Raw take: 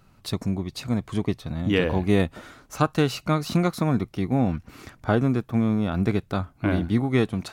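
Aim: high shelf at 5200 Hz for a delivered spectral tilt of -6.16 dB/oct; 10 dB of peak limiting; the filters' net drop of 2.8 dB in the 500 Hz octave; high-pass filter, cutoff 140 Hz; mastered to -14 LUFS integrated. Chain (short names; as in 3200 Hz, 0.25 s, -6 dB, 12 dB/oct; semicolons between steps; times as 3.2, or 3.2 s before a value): HPF 140 Hz; bell 500 Hz -3.5 dB; high shelf 5200 Hz -4 dB; gain +15 dB; limiter -2 dBFS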